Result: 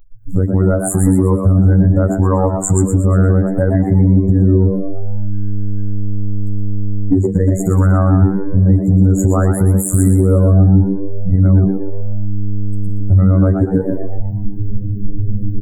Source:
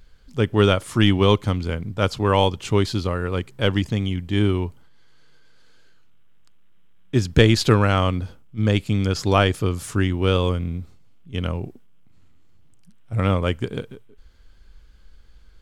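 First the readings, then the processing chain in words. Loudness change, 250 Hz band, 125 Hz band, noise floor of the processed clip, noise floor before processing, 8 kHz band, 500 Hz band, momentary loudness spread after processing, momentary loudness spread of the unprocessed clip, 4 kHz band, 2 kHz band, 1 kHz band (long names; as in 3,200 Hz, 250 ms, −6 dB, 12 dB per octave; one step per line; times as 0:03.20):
+7.0 dB, +10.0 dB, +11.0 dB, −20 dBFS, −48 dBFS, +13.0 dB, +3.5 dB, 11 LU, 13 LU, below −40 dB, can't be measured, 0.0 dB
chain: spectral dynamics exaggerated over time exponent 2
camcorder AGC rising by 80 dB per second
low-shelf EQ 490 Hz +8 dB
brick-wall band-stop 2,000–6,700 Hz
downward compressor 6 to 1, threshold −24 dBFS, peak gain reduction 21 dB
phases set to zero 93.7 Hz
parametric band 1,800 Hz −9 dB 0.46 octaves
echo with shifted repeats 119 ms, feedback 40%, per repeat +100 Hz, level −8 dB
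feedback delay network reverb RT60 0.38 s, high-frequency decay 0.9×, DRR 20 dB
boost into a limiter +18 dB
level −1 dB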